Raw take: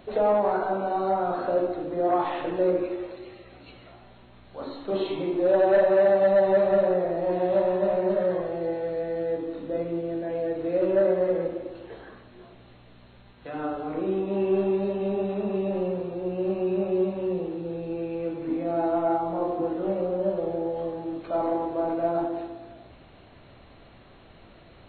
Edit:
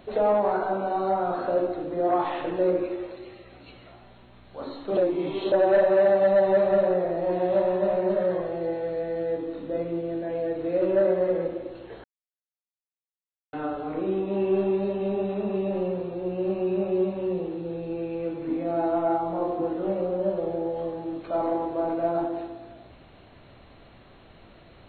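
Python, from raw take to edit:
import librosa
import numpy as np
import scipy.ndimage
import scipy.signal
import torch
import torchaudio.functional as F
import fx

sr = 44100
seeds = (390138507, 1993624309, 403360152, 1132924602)

y = fx.edit(x, sr, fx.reverse_span(start_s=4.97, length_s=0.55),
    fx.silence(start_s=12.04, length_s=1.49), tone=tone)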